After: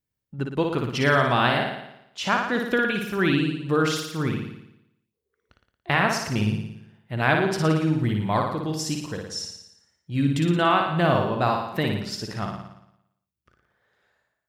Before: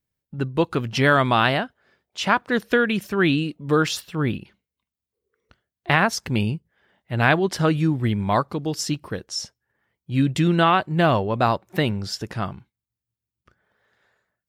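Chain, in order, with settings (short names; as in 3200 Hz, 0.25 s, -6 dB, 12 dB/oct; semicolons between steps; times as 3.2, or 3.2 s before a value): flutter echo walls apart 9.8 m, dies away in 0.81 s; gain -4 dB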